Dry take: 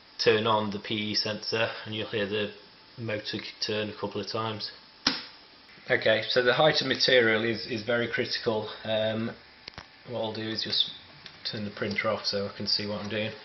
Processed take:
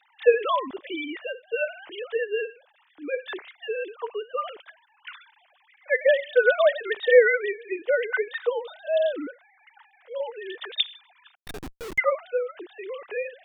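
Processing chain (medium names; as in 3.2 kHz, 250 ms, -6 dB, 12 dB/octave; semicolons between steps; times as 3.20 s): formants replaced by sine waves; 11.35–11.98 s: Schmitt trigger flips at -36 dBFS; trim +2.5 dB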